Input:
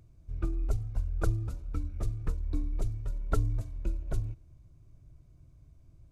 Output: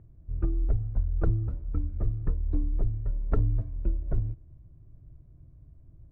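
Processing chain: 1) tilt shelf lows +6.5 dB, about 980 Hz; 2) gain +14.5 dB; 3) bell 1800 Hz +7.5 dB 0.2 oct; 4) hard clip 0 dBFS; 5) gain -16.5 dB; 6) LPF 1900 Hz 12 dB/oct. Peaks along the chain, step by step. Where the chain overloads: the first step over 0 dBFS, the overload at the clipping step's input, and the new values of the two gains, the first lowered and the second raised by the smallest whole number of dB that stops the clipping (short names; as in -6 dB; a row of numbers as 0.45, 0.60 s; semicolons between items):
-10.0, +4.5, +4.5, 0.0, -16.5, -16.5 dBFS; step 2, 4.5 dB; step 2 +9.5 dB, step 5 -11.5 dB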